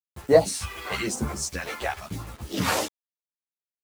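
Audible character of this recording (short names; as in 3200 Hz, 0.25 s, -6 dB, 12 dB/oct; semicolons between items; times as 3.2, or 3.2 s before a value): phasing stages 2, 0.96 Hz, lowest notch 140–3300 Hz; a quantiser's noise floor 8-bit, dither none; a shimmering, thickened sound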